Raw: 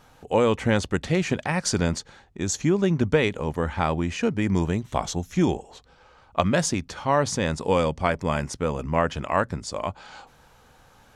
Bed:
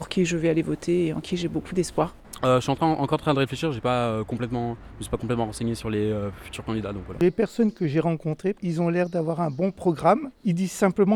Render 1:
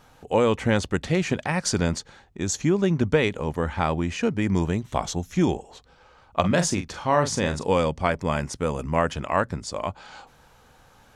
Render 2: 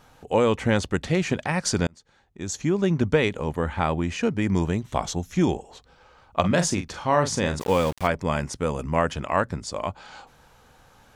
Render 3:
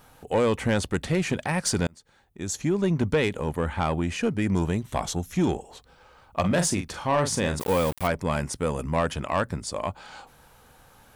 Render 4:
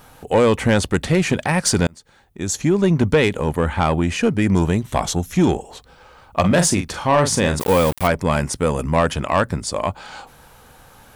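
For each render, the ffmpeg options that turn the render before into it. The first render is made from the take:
-filter_complex "[0:a]asettb=1/sr,asplit=3[s0][s1][s2];[s0]atrim=end=6.404[s3];[s1]atrim=start=6.4:end=7.64,asetpts=PTS-STARTPTS,afade=t=in:d=0.004:c=qsin,afade=t=out:st=1.236:d=0.004:c=qsin,asplit=2[s4][s5];[s5]adelay=40,volume=0.398[s6];[s4][s6]amix=inputs=2:normalize=0,atrim=end_sample=54684[s7];[s2]atrim=start=7.636[s8];[s3][s7]acrossfade=d=0.004:c1=hsin:c2=qsin[s9];[s9][s8]acrossfade=d=0.004:c1=qsin:c2=hsin,asettb=1/sr,asplit=3[s10][s11][s12];[s10]atrim=end=8.564[s13];[s11]atrim=start=8.56:end=9.14,asetpts=PTS-STARTPTS,afade=t=in:d=0.004:c=qsin,afade=t=out:st=0.576:d=0.004:c=qsin,equalizer=f=9500:t=o:w=0.77:g=8.5[s14];[s12]atrim=start=9.136[s15];[s13][s14]acrossfade=d=0.004:c1=hsin:c2=qsin[s16];[s16][s15]acrossfade=d=0.004:c1=qsin:c2=hsin"
-filter_complex "[0:a]asettb=1/sr,asplit=3[s0][s1][s2];[s0]atrim=end=3.514[s3];[s1]atrim=start=3.51:end=4.04,asetpts=PTS-STARTPTS,afade=t=in:d=0.004:c=qsin,afade=t=out:st=0.526:d=0.004:c=qsin,equalizer=f=5400:t=o:w=0.37:g=-9[s4];[s2]atrim=start=4.036[s5];[s3][s4]acrossfade=d=0.004:c1=hsin:c2=qsin[s6];[s6][s5]acrossfade=d=0.004:c1=qsin:c2=hsin,asplit=3[s7][s8][s9];[s7]afade=t=out:st=7.59:d=0.02[s10];[s8]aeval=exprs='val(0)*gte(abs(val(0)),0.0282)':c=same,afade=t=in:st=7.59:d=0.02,afade=t=out:st=8.06:d=0.02[s11];[s9]afade=t=in:st=8.06:d=0.02[s12];[s10][s11][s12]amix=inputs=3:normalize=0,asplit=2[s13][s14];[s13]atrim=end=1.87,asetpts=PTS-STARTPTS,afade=t=out:st=1.866:d=0.004:c=hsin[s15];[s14]atrim=start=1.87,asetpts=PTS-STARTPTS,afade=t=in:d=1.03[s16];[s15][s16]concat=n=2:v=0:a=1"
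-af "aexciter=amount=3.3:drive=3:freq=8700,asoftclip=type=tanh:threshold=0.178"
-af "volume=2.37"

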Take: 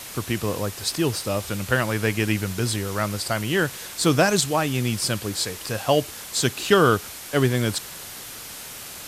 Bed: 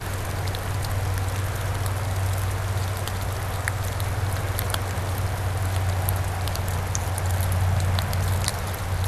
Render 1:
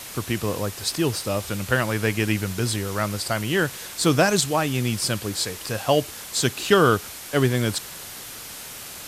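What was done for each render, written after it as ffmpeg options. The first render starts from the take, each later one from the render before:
-af anull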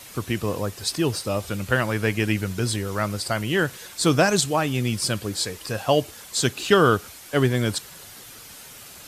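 -af "afftdn=nr=7:nf=-38"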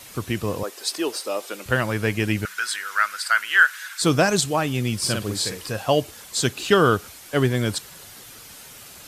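-filter_complex "[0:a]asettb=1/sr,asplit=3[s0][s1][s2];[s0]atrim=end=0.634[s3];[s1]atrim=start=0.63:end=1.66,asetpts=PTS-STARTPTS,afade=t=in:d=0.004:c=qsin,afade=t=out:st=1.026:d=0.004:c=qsin,highpass=f=320:w=0.5412,highpass=f=320:w=1.3066[s4];[s2]atrim=start=1.656[s5];[s3][s4]acrossfade=d=0.004:c1=hsin:c2=qsin[s6];[s6][s5]acrossfade=d=0.004:c1=qsin:c2=hsin,asettb=1/sr,asplit=3[s7][s8][s9];[s7]atrim=end=2.454[s10];[s8]atrim=start=2.45:end=4.02,asetpts=PTS-STARTPTS,afade=t=in:d=0.004:c=qsin,afade=t=out:st=1.566:d=0.004:c=qsin,highpass=f=1500:t=q:w=4.7[s11];[s9]atrim=start=4.016[s12];[s10][s11]acrossfade=d=0.004:c1=hsin:c2=qsin[s13];[s13][s12]acrossfade=d=0.004:c1=qsin:c2=hsin,asettb=1/sr,asplit=3[s14][s15][s16];[s14]atrim=end=4.984[s17];[s15]atrim=start=4.98:end=5.7,asetpts=PTS-STARTPTS,afade=t=in:d=0.004:c=qsin,afade=t=out:st=0.716:d=0.004:c=qsin,asplit=2[s18][s19];[s19]adelay=48,volume=0.668[s20];[s18][s20]amix=inputs=2:normalize=0,atrim=end_sample=31752[s21];[s16]atrim=start=5.696[s22];[s17][s21]acrossfade=d=0.004:c1=hsin:c2=qsin[s23];[s23][s22]acrossfade=d=0.004:c1=qsin:c2=hsin"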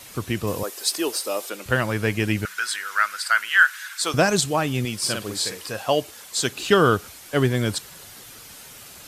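-filter_complex "[0:a]asettb=1/sr,asplit=3[s0][s1][s2];[s0]atrim=end=0.474[s3];[s1]atrim=start=0.47:end=1.5,asetpts=PTS-STARTPTS,afade=t=in:d=0.004:c=qsin,afade=t=out:st=1.026:d=0.004:c=qsin,highshelf=f=7500:g=9[s4];[s2]atrim=start=1.496[s5];[s3][s4]acrossfade=d=0.004:c1=hsin:c2=qsin[s6];[s6][s5]acrossfade=d=0.004:c1=qsin:c2=hsin,asettb=1/sr,asplit=3[s7][s8][s9];[s7]atrim=end=3.494[s10];[s8]atrim=start=3.49:end=4.14,asetpts=PTS-STARTPTS,afade=t=in:d=0.004:c=qsin,afade=t=out:st=0.646:d=0.004:c=qsin,highpass=670[s11];[s9]atrim=start=4.136[s12];[s10][s11]acrossfade=d=0.004:c1=hsin:c2=qsin[s13];[s13][s12]acrossfade=d=0.004:c1=qsin:c2=hsin,asettb=1/sr,asplit=3[s14][s15][s16];[s14]atrim=end=4.854[s17];[s15]atrim=start=4.85:end=6.52,asetpts=PTS-STARTPTS,afade=t=in:d=0.004:c=qsin,afade=t=out:st=1.666:d=0.004:c=qsin,lowshelf=f=200:g=-10.5[s18];[s16]atrim=start=6.516[s19];[s17][s18]acrossfade=d=0.004:c1=hsin:c2=qsin[s20];[s20][s19]acrossfade=d=0.004:c1=qsin:c2=hsin"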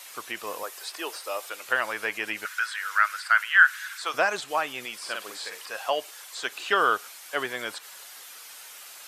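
-filter_complex "[0:a]acrossover=split=2800[s0][s1];[s1]acompressor=threshold=0.01:ratio=4:attack=1:release=60[s2];[s0][s2]amix=inputs=2:normalize=0,highpass=790"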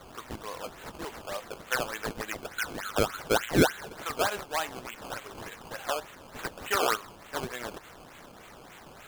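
-af "flanger=delay=4.6:depth=8.2:regen=84:speed=0.76:shape=triangular,acrusher=samples=16:mix=1:aa=0.000001:lfo=1:lforange=16:lforate=3.4"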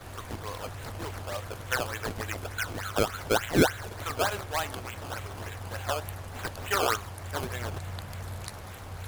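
-filter_complex "[1:a]volume=0.178[s0];[0:a][s0]amix=inputs=2:normalize=0"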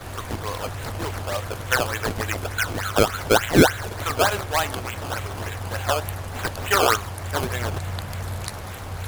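-af "volume=2.51,alimiter=limit=0.708:level=0:latency=1"

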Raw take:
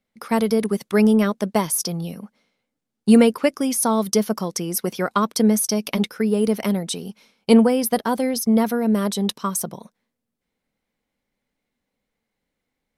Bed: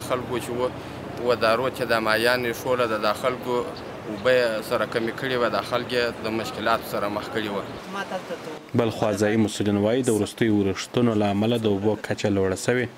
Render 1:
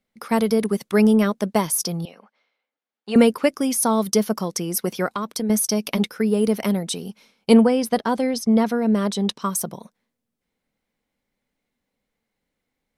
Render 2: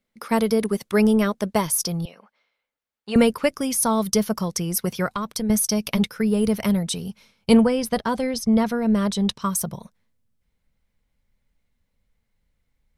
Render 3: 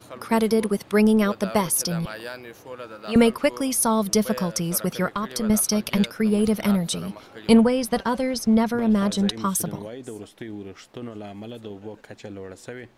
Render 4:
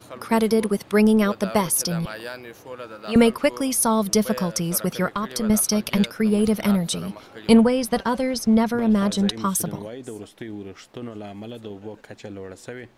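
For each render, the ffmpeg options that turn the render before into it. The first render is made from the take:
-filter_complex "[0:a]asettb=1/sr,asplit=3[s0][s1][s2];[s0]atrim=end=2.054[s3];[s1]atrim=start=2.05:end=3.16,asetpts=PTS-STARTPTS,afade=t=in:d=0.004:c=qsin,afade=t=out:st=1.106:d=0.004:c=qsin,highpass=640,lowpass=3500[s4];[s2]atrim=start=3.156[s5];[s3][s4]acrossfade=d=0.004:c1=hsin:c2=qsin[s6];[s6][s5]acrossfade=d=0.004:c1=qsin:c2=hsin,asettb=1/sr,asplit=3[s7][s8][s9];[s7]atrim=end=5.094[s10];[s8]atrim=start=5.09:end=5.5,asetpts=PTS-STARTPTS,afade=t=in:d=0.004:c=qsin,afade=t=out:st=0.406:d=0.004:c=qsin,acompressor=threshold=0.0631:ratio=3:attack=3.2:release=140:knee=1:detection=peak[s11];[s9]atrim=start=5.496[s12];[s10][s11]acrossfade=d=0.004:c1=hsin:c2=qsin[s13];[s13][s12]acrossfade=d=0.004:c1=qsin:c2=hsin,asettb=1/sr,asplit=3[s14][s15][s16];[s14]atrim=end=7.614[s17];[s15]atrim=start=7.61:end=9.42,asetpts=PTS-STARTPTS,afade=t=in:d=0.004:c=qsin,afade=t=out:st=1.806:d=0.004:c=qsin,lowpass=7300[s18];[s16]atrim=start=9.416[s19];[s17][s18]acrossfade=d=0.004:c1=hsin:c2=qsin[s20];[s20][s19]acrossfade=d=0.004:c1=qsin:c2=hsin"
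-af "bandreject=f=760:w=13,asubboost=boost=8.5:cutoff=100"
-filter_complex "[1:a]volume=0.178[s0];[0:a][s0]amix=inputs=2:normalize=0"
-af "volume=1.12"

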